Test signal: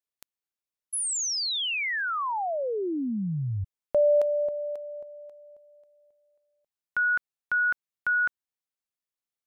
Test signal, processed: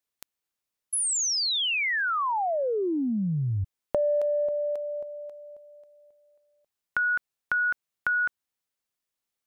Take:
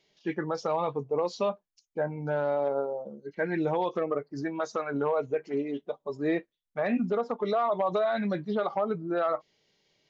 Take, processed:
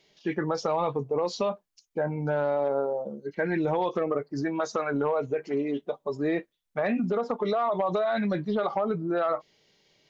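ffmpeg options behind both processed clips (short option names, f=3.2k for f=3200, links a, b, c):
-af "acompressor=threshold=-32dB:ratio=4:attack=14:release=33:knee=6:detection=peak,volume=5.5dB"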